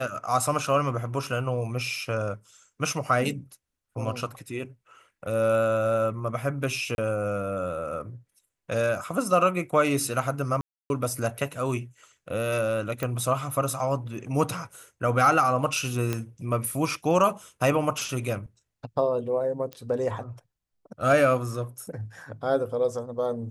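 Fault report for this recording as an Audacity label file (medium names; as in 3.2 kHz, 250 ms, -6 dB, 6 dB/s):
1.980000	1.980000	dropout 2.4 ms
6.950000	6.980000	dropout 31 ms
10.610000	10.900000	dropout 291 ms
13.030000	13.030000	pop -15 dBFS
16.130000	16.130000	pop -13 dBFS
19.730000	19.730000	pop -22 dBFS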